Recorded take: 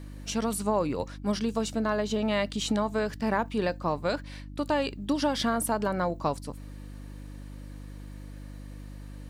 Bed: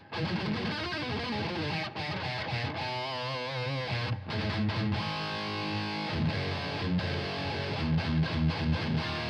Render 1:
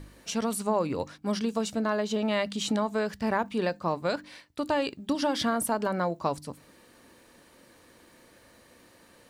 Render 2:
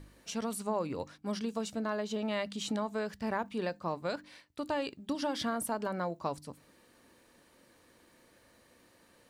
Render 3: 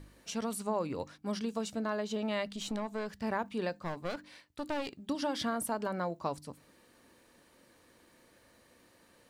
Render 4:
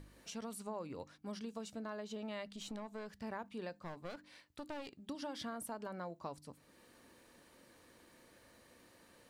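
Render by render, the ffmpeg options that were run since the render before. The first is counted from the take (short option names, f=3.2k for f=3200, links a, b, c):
-af "bandreject=f=50:t=h:w=4,bandreject=f=100:t=h:w=4,bandreject=f=150:t=h:w=4,bandreject=f=200:t=h:w=4,bandreject=f=250:t=h:w=4,bandreject=f=300:t=h:w=4"
-af "volume=-6.5dB"
-filter_complex "[0:a]asettb=1/sr,asplit=3[a][b][c];[a]atrim=end=2.474[d];[b]atrim=start=2.47:end=3.17,asetpts=PTS-STARTPTS,afade=t=in:d=0.004:c=qsin,afade=t=out:st=0.696:d=0.004:c=qsin,aeval=exprs='(tanh(25.1*val(0)+0.45)-tanh(0.45))/25.1':c=same[e];[c]atrim=start=3.166[f];[d][e]acrossfade=d=0.004:c1=hsin:c2=qsin[g];[g][f]acrossfade=d=0.004:c1=qsin:c2=hsin,asettb=1/sr,asplit=3[h][i][j];[h]atrim=end=3.734[k];[i]atrim=start=3.73:end=5.07,asetpts=PTS-STARTPTS,afade=t=in:d=0.004:c=qsin,afade=t=out:st=1.336:d=0.004:c=qsin,aeval=exprs='clip(val(0),-1,0.00891)':c=same[l];[j]atrim=start=5.066[m];[k][l]acrossfade=d=0.004:c1=hsin:c2=qsin[n];[n][m]acrossfade=d=0.004:c1=qsin:c2=hsin"
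-af "acompressor=threshold=-59dB:ratio=1.5"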